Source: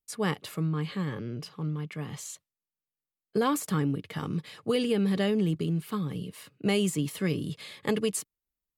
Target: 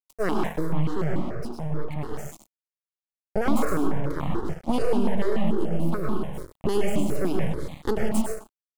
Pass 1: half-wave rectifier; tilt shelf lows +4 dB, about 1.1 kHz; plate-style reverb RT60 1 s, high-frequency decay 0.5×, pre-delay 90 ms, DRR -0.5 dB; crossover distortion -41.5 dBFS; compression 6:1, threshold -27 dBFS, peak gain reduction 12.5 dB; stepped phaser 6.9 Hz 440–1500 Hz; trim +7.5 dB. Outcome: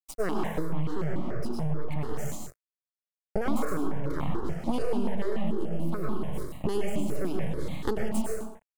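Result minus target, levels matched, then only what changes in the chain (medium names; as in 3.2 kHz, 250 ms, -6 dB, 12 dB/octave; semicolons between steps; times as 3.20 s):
compression: peak gain reduction +6 dB; crossover distortion: distortion -9 dB
change: crossover distortion -32.5 dBFS; change: compression 6:1, threshold -20.5 dBFS, peak gain reduction 6.5 dB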